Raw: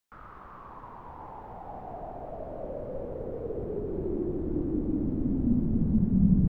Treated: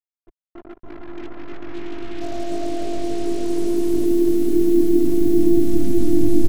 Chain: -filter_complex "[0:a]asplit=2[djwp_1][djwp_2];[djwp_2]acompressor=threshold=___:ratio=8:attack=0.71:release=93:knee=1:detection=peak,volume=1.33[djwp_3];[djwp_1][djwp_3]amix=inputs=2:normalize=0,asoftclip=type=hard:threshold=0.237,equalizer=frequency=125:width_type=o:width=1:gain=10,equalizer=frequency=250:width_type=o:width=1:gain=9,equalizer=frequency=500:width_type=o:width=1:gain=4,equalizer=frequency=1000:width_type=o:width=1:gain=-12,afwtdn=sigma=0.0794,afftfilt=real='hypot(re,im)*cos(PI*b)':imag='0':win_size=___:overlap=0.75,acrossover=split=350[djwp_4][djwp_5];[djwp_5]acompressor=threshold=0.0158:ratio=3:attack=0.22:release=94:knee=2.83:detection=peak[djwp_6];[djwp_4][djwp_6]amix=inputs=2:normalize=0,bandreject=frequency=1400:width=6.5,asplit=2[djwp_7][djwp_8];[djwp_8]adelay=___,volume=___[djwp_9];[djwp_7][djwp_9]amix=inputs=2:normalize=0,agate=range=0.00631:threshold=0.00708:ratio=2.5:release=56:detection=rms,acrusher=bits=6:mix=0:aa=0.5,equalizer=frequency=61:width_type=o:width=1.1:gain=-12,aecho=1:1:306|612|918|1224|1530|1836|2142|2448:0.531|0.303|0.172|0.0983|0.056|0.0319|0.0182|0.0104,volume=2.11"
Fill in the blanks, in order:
0.0158, 512, 20, 0.75